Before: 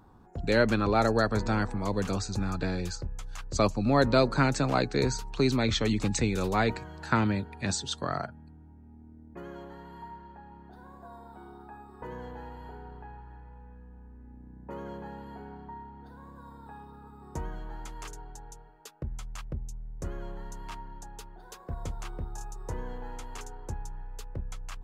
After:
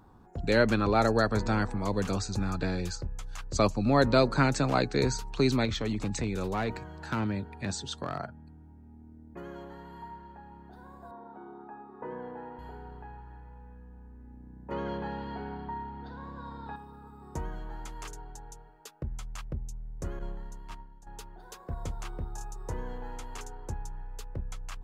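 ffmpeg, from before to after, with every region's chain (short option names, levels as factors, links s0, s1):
-filter_complex "[0:a]asettb=1/sr,asplit=3[s0][s1][s2];[s0]atrim=end=5.654[s3];[s1]atrim=start=5.65:end=8.47,asetpts=PTS-STARTPTS,afade=t=in:d=0.004:c=qsin,afade=t=out:st=2.816:d=0.004:c=qsin,highshelf=f=2100:g=-4.5,acompressor=threshold=0.0251:ratio=1.5:attack=3.2:release=140:knee=1:detection=peak,volume=15.8,asoftclip=hard,volume=0.0631[s4];[s2]atrim=start=8.466[s5];[s3][s4]acrossfade=d=0.004:c1=hsin:c2=qsin[s6];[s6][s5]acrossfade=d=0.004:c1=qsin:c2=hsin,asettb=1/sr,asplit=3[s7][s8][s9];[s7]atrim=end=11.114[s10];[s8]atrim=start=11.11:end=12.59,asetpts=PTS-STARTPTS,afade=t=in:d=0.004:c=qsin,afade=t=out:st=1.476:d=0.004:c=qsin,highpass=250,lowpass=2000,lowshelf=f=460:g=6[s11];[s9]atrim=start=12.586[s12];[s10][s11]acrossfade=d=0.004:c1=hsin:c2=qsin[s13];[s13][s12]acrossfade=d=0.004:c1=qsin:c2=hsin,asettb=1/sr,asplit=3[s14][s15][s16];[s14]atrim=end=14.714[s17];[s15]atrim=start=14.71:end=16.76,asetpts=PTS-STARTPTS,afade=t=in:d=0.004:c=qsin,afade=t=out:st=2.046:d=0.004:c=qsin,lowpass=f=4600:w=0.5412,lowpass=f=4600:w=1.3066,highshelf=f=2900:g=9,acontrast=32[s18];[s16]atrim=start=16.756[s19];[s17][s18]acrossfade=d=0.004:c1=hsin:c2=qsin[s20];[s20][s19]acrossfade=d=0.004:c1=qsin:c2=hsin,asettb=1/sr,asplit=3[s21][s22][s23];[s21]atrim=end=20.194[s24];[s22]atrim=start=20.19:end=21.07,asetpts=PTS-STARTPTS,afade=t=in:d=0.004:c=qsin,afade=t=out:st=0.876:d=0.004:c=qsin,agate=range=0.0224:threshold=0.0282:ratio=3:release=100:detection=peak,lowshelf=f=170:g=6,acontrast=53[s25];[s23]atrim=start=21.066[s26];[s24][s25]acrossfade=d=0.004:c1=hsin:c2=qsin[s27];[s27][s26]acrossfade=d=0.004:c1=qsin:c2=hsin"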